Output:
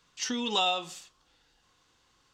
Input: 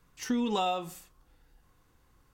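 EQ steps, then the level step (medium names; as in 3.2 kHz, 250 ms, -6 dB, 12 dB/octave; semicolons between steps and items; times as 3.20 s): tape spacing loss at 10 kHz 21 dB; tilt EQ +3.5 dB/octave; high-order bell 4.7 kHz +8.5 dB; +3.0 dB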